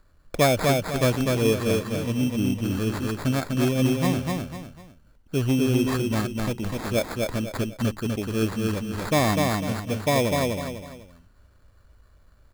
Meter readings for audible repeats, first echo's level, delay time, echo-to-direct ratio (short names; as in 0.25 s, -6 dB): 3, -3.0 dB, 0.249 s, -2.5 dB